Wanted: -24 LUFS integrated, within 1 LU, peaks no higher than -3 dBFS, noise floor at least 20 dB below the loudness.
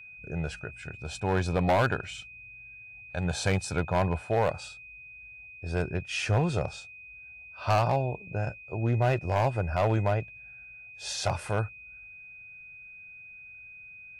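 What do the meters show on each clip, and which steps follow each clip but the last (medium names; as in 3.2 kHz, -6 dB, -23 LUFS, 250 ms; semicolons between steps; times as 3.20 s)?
clipped samples 0.9%; clipping level -19.0 dBFS; steady tone 2.5 kHz; tone level -45 dBFS; loudness -29.5 LUFS; peak level -19.0 dBFS; loudness target -24.0 LUFS
-> clip repair -19 dBFS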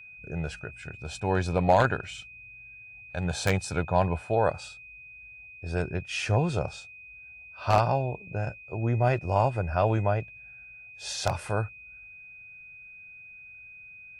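clipped samples 0.0%; steady tone 2.5 kHz; tone level -45 dBFS
-> band-stop 2.5 kHz, Q 30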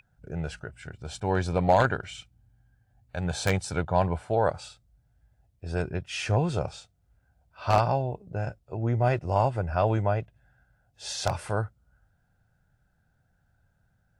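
steady tone not found; loudness -28.0 LUFS; peak level -10.0 dBFS; loudness target -24.0 LUFS
-> trim +4 dB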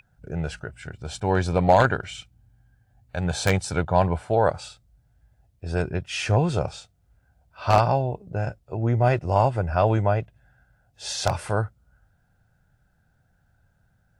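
loudness -24.0 LUFS; peak level -6.0 dBFS; noise floor -66 dBFS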